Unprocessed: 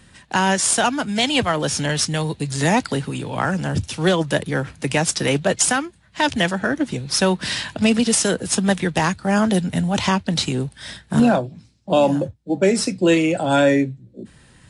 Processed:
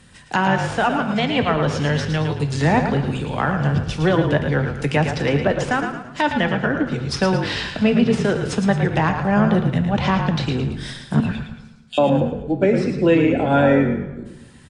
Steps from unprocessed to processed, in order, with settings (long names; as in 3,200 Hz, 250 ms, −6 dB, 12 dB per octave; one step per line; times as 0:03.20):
0:07.39–0:07.85: running median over 3 samples
0:11.20–0:11.98: elliptic high-pass filter 1,700 Hz
treble cut that deepens with the level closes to 2,200 Hz, closed at −16.5 dBFS
echo with shifted repeats 111 ms, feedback 40%, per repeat −44 Hz, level −7 dB
on a send at −9 dB: convolution reverb RT60 1.1 s, pre-delay 3 ms